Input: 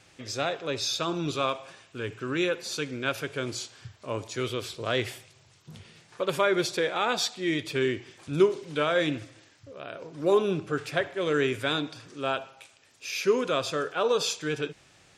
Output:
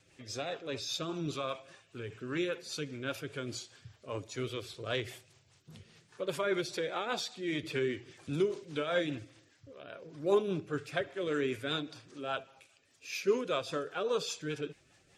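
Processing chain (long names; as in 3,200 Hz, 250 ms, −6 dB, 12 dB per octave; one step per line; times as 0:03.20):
spectral magnitudes quantised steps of 15 dB
rotating-speaker cabinet horn 5 Hz
0:07.63–0:08.51: multiband upward and downward compressor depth 40%
level −4.5 dB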